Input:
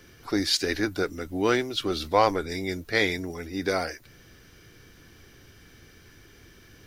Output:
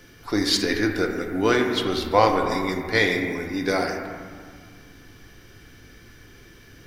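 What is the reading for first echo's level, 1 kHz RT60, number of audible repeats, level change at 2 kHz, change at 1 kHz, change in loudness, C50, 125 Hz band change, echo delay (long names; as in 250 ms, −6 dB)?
no echo audible, 1.9 s, no echo audible, +4.5 dB, +4.0 dB, +4.0 dB, 4.5 dB, +4.0 dB, no echo audible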